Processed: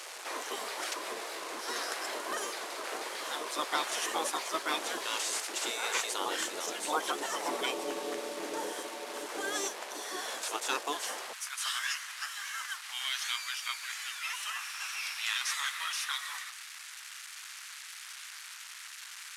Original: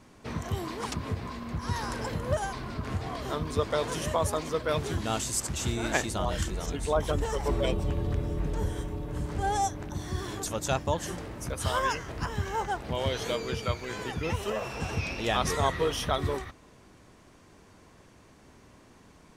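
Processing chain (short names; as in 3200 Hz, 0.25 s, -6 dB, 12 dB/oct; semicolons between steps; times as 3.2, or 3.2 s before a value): delta modulation 64 kbps, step -38 dBFS; spectral gate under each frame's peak -10 dB weak; HPF 350 Hz 24 dB/oct, from 11.33 s 1300 Hz; gain +3.5 dB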